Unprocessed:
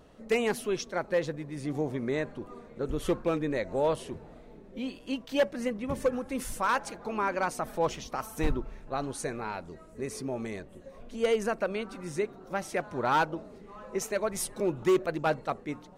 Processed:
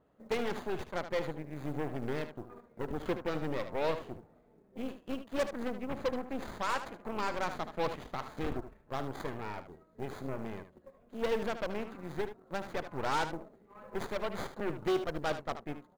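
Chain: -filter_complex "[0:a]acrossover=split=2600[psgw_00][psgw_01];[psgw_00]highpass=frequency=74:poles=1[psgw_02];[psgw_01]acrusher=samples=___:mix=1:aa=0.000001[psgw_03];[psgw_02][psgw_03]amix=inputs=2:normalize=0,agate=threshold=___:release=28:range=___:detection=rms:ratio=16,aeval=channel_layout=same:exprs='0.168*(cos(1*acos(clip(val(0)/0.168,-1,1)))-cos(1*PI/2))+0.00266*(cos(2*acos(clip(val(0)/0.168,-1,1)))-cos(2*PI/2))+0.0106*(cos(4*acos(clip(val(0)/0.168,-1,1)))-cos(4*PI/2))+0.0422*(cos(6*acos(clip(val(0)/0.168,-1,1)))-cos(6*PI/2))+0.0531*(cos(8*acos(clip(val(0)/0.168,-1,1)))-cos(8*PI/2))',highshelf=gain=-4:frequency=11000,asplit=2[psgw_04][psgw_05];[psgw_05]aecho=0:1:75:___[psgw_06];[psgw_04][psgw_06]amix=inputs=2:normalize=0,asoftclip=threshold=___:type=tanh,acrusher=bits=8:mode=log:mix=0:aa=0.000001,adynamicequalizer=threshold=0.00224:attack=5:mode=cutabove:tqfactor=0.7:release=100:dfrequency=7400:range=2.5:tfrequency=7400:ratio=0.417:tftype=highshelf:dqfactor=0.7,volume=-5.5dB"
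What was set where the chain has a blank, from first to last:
16, -48dB, -7dB, 0.266, -16dB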